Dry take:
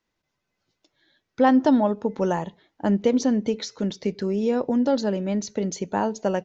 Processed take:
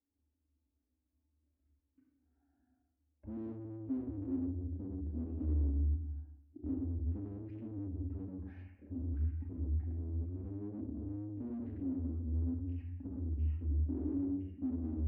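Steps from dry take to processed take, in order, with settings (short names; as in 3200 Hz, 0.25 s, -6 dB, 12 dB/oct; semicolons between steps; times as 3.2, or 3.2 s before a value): low shelf 410 Hz +5 dB; reverb RT60 0.35 s, pre-delay 13 ms, DRR -0.5 dB; soft clip -26.5 dBFS, distortion -3 dB; double band-pass 340 Hz, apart 1.9 oct; speed mistake 78 rpm record played at 33 rpm; gain -1.5 dB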